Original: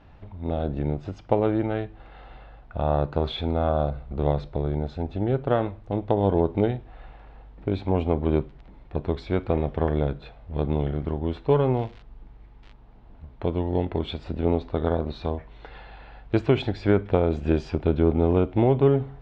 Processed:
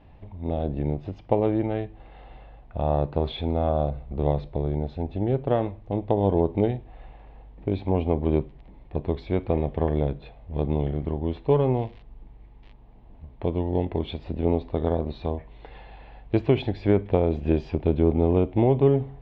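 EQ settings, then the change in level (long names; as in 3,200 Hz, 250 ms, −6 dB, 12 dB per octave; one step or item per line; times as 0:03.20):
low-pass filter 3,500 Hz 12 dB per octave
parametric band 1,400 Hz −11 dB 0.46 octaves
0.0 dB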